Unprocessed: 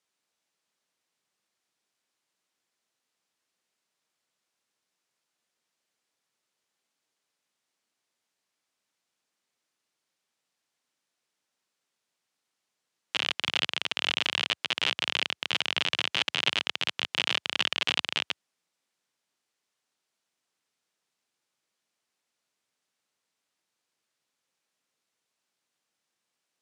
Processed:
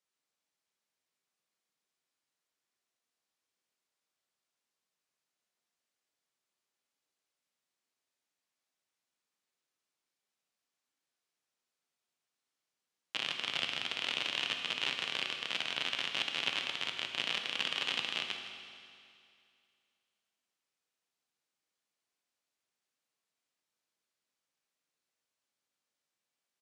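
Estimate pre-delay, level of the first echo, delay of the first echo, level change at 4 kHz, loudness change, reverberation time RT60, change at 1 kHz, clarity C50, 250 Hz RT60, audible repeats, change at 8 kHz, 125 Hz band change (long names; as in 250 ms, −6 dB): 8 ms, −12.0 dB, 162 ms, −6.5 dB, −6.5 dB, 2.4 s, −6.5 dB, 4.5 dB, 2.4 s, 1, −6.5 dB, −6.0 dB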